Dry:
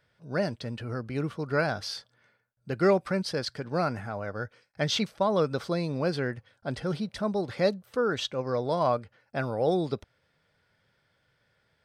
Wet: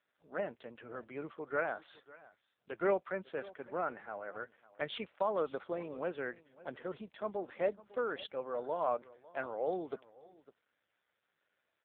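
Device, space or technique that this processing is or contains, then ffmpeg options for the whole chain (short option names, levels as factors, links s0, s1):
satellite phone: -af "highpass=380,lowpass=3300,aecho=1:1:552:0.106,volume=0.531" -ar 8000 -c:a libopencore_amrnb -b:a 5900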